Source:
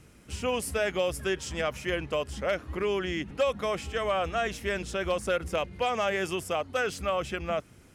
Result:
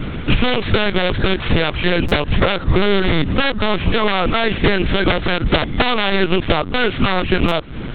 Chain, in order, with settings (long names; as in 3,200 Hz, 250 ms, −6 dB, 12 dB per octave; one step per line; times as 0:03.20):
samples sorted by size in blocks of 8 samples
wrap-around overflow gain 21 dB
downward compressor 16 to 1, threshold −40 dBFS, peak gain reduction 16.5 dB
parametric band 640 Hz −6.5 dB 0.64 octaves
linear-prediction vocoder at 8 kHz pitch kept
boost into a limiter +32.5 dB
buffer that repeats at 0:02.08/0:07.48, samples 256, times 5
level −1 dB